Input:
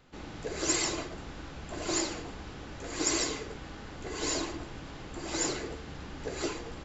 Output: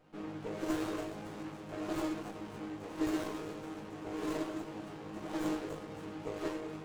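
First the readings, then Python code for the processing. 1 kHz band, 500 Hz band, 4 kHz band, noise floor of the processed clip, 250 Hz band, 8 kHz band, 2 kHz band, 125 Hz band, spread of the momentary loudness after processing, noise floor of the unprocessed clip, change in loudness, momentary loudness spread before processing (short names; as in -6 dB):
-3.0 dB, -2.5 dB, -14.5 dB, -47 dBFS, +1.0 dB, n/a, -8.0 dB, -4.5 dB, 9 LU, -45 dBFS, -5.5 dB, 15 LU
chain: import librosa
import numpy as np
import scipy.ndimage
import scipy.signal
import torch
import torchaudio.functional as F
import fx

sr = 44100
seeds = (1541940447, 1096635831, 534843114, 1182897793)

p1 = scipy.signal.sosfilt(scipy.signal.butter(2, 160.0, 'highpass', fs=sr, output='sos'), x)
p2 = fx.peak_eq(p1, sr, hz=5200.0, db=-12.5, octaves=1.3)
p3 = fx.rider(p2, sr, range_db=4, speed_s=0.5)
p4 = p2 + (p3 * librosa.db_to_amplitude(3.0))
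p5 = fx.resonator_bank(p4, sr, root=44, chord='fifth', decay_s=0.34)
p6 = p5 + fx.echo_split(p5, sr, split_hz=730.0, low_ms=187, high_ms=280, feedback_pct=52, wet_db=-11.5, dry=0)
p7 = fx.running_max(p6, sr, window=17)
y = p7 * librosa.db_to_amplitude(4.5)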